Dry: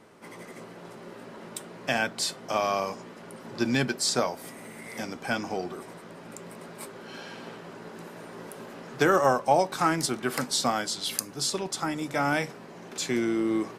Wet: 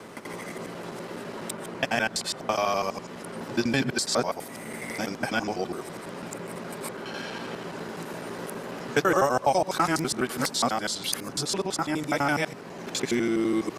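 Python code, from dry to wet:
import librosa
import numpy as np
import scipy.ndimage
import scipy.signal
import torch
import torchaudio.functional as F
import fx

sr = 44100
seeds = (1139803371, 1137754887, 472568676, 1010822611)

y = fx.local_reverse(x, sr, ms=83.0)
y = fx.band_squash(y, sr, depth_pct=40)
y = y * librosa.db_to_amplitude(1.5)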